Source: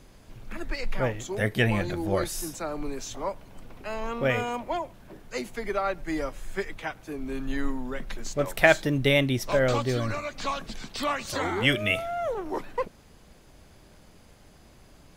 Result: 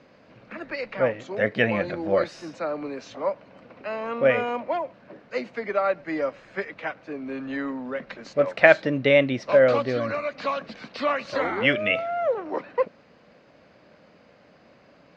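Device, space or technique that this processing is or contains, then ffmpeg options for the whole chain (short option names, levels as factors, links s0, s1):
kitchen radio: -af "highpass=210,equalizer=f=370:t=q:w=4:g=-6,equalizer=f=540:t=q:w=4:g=6,equalizer=f=860:t=q:w=4:g=-4,equalizer=f=3400:t=q:w=4:g=-9,lowpass=f=4100:w=0.5412,lowpass=f=4100:w=1.3066,volume=1.5"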